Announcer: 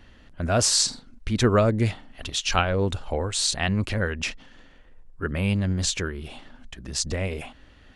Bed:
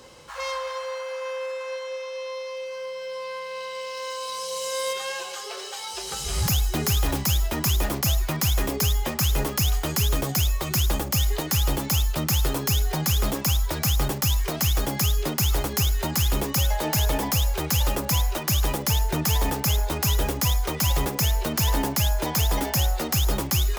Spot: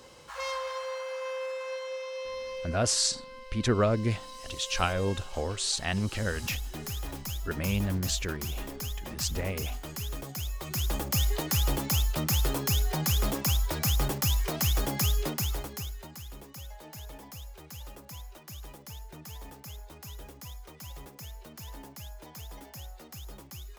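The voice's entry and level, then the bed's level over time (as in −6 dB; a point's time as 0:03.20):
2.25 s, −5.5 dB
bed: 0:02.63 −4 dB
0:02.95 −13.5 dB
0:10.37 −13.5 dB
0:11.13 −4 dB
0:15.21 −4 dB
0:16.23 −21.5 dB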